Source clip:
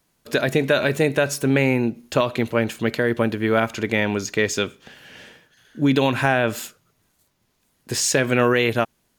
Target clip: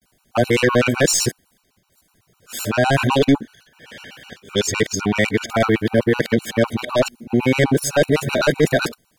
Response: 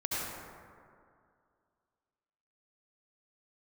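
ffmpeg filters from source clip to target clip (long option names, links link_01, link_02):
-af "areverse,aeval=exprs='0.501*(cos(1*acos(clip(val(0)/0.501,-1,1)))-cos(1*PI/2))+0.2*(cos(2*acos(clip(val(0)/0.501,-1,1)))-cos(2*PI/2))+0.126*(cos(5*acos(clip(val(0)/0.501,-1,1)))-cos(5*PI/2))':channel_layout=same,afftfilt=real='re*gt(sin(2*PI*7.9*pts/sr)*(1-2*mod(floor(b*sr/1024/760),2)),0)':imag='im*gt(sin(2*PI*7.9*pts/sr)*(1-2*mod(floor(b*sr/1024/760),2)),0)':win_size=1024:overlap=0.75,volume=1dB"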